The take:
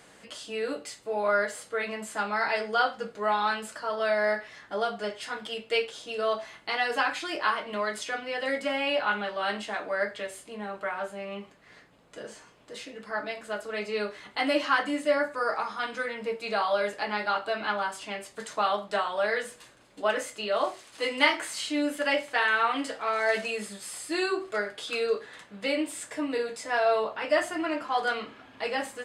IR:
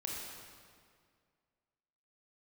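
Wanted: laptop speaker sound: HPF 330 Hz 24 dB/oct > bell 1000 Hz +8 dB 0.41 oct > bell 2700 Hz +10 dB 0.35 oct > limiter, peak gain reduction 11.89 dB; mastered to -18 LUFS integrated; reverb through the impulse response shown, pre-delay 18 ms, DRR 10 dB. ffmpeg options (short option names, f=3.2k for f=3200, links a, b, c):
-filter_complex "[0:a]asplit=2[a][b];[1:a]atrim=start_sample=2205,adelay=18[c];[b][c]afir=irnorm=-1:irlink=0,volume=-11dB[d];[a][d]amix=inputs=2:normalize=0,highpass=f=330:w=0.5412,highpass=f=330:w=1.3066,equalizer=f=1k:t=o:w=0.41:g=8,equalizer=f=2.7k:t=o:w=0.35:g=10,volume=10.5dB,alimiter=limit=-6.5dB:level=0:latency=1"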